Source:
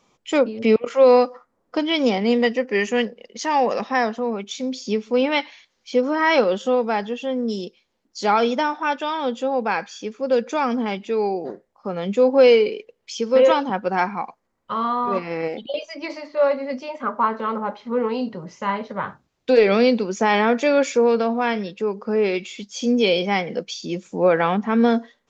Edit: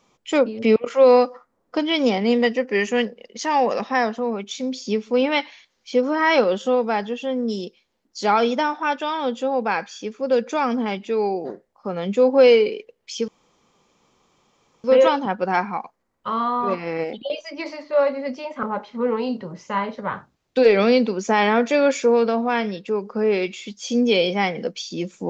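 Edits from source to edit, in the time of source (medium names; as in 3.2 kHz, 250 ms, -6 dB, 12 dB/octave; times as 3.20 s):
13.28 s: insert room tone 1.56 s
17.07–17.55 s: delete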